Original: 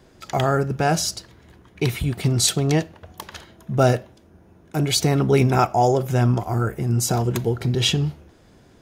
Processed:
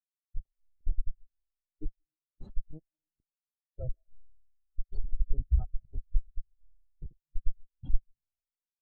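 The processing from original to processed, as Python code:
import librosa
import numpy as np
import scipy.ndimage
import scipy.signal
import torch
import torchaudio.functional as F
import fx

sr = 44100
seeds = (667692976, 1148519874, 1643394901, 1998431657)

y = fx.hpss(x, sr, part='harmonic', gain_db=-13)
y = fx.schmitt(y, sr, flips_db=-17.0)
y = fx.rev_freeverb(y, sr, rt60_s=3.2, hf_ratio=0.4, predelay_ms=95, drr_db=10.5)
y = fx.spectral_expand(y, sr, expansion=4.0)
y = y * 10.0 ** (9.5 / 20.0)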